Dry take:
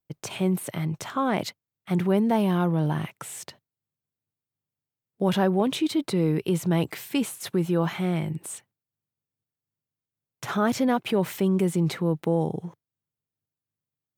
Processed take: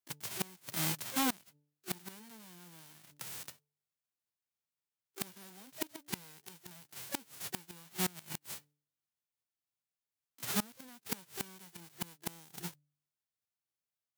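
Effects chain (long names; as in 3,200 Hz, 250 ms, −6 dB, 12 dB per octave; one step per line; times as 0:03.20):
spectral envelope flattened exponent 0.1
hum removal 146.8 Hz, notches 3
pitch-shifted copies added +12 semitones −12 dB
gate with flip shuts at −13 dBFS, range −26 dB
level −6 dB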